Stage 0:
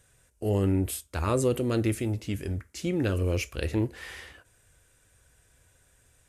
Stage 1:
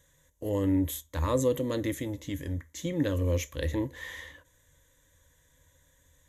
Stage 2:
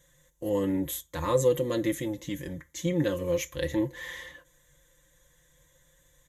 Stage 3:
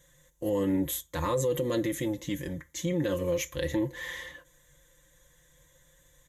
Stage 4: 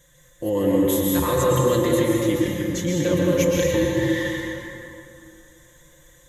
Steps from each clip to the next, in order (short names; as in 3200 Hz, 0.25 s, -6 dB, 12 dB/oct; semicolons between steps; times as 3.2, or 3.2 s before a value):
ripple EQ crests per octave 1.1, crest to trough 13 dB; gain -3.5 dB
comb 5.7 ms, depth 78%
limiter -21.5 dBFS, peak gain reduction 9 dB; gain +1.5 dB
reverb RT60 2.7 s, pre-delay 0.108 s, DRR -3 dB; gain +5 dB